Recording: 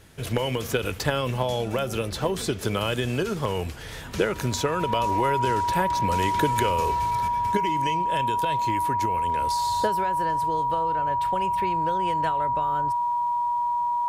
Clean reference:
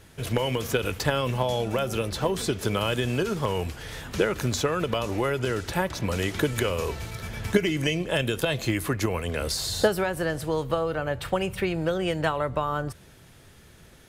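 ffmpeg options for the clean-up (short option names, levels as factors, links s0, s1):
-af "bandreject=f=960:w=30,asetnsamples=n=441:p=0,asendcmd='7.28 volume volume 5.5dB',volume=1"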